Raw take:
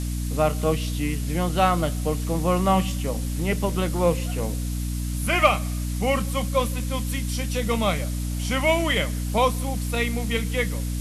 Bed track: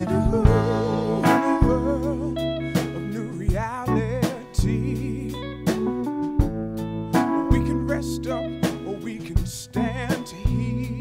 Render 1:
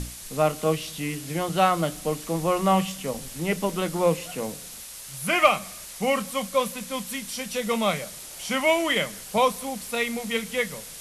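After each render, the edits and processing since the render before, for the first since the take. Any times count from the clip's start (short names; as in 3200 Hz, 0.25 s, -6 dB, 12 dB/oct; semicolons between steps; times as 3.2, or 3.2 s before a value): notches 60/120/180/240/300 Hz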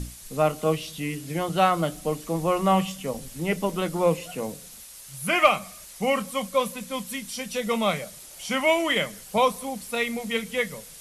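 denoiser 6 dB, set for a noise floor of -41 dBFS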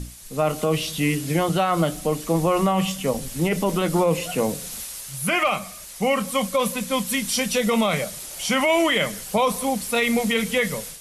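AGC gain up to 12 dB; limiter -11.5 dBFS, peak gain reduction 10.5 dB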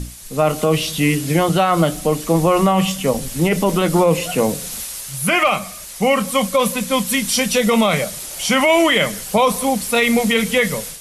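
gain +5.5 dB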